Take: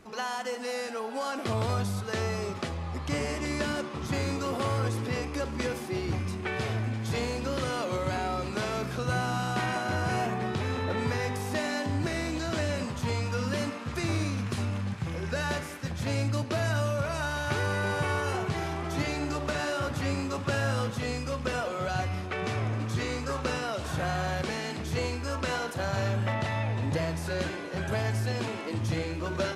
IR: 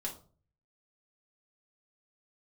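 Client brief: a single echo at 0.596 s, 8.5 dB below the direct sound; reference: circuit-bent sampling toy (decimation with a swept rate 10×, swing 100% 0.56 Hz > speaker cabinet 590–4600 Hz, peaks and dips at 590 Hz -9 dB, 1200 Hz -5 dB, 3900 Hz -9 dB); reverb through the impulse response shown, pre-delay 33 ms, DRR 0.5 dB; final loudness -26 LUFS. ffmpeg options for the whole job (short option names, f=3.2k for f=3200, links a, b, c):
-filter_complex "[0:a]aecho=1:1:596:0.376,asplit=2[a][b];[1:a]atrim=start_sample=2205,adelay=33[c];[b][c]afir=irnorm=-1:irlink=0,volume=-1dB[d];[a][d]amix=inputs=2:normalize=0,acrusher=samples=10:mix=1:aa=0.000001:lfo=1:lforange=10:lforate=0.56,highpass=590,equalizer=f=590:t=q:w=4:g=-9,equalizer=f=1.2k:t=q:w=4:g=-5,equalizer=f=3.9k:t=q:w=4:g=-9,lowpass=f=4.6k:w=0.5412,lowpass=f=4.6k:w=1.3066,volume=8.5dB"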